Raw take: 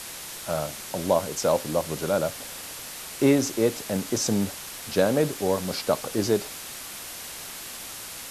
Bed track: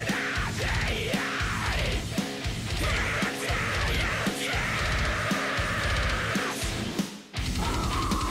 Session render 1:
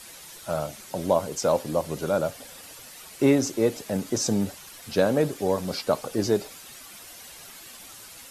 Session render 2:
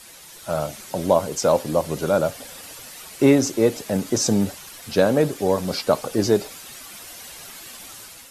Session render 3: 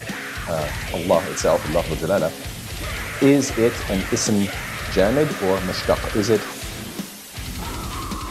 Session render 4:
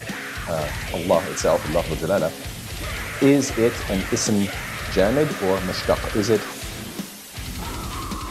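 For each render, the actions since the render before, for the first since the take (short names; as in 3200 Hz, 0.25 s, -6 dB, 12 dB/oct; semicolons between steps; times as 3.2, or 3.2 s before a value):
denoiser 10 dB, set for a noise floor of -39 dBFS
AGC gain up to 5 dB
add bed track -1.5 dB
gain -1 dB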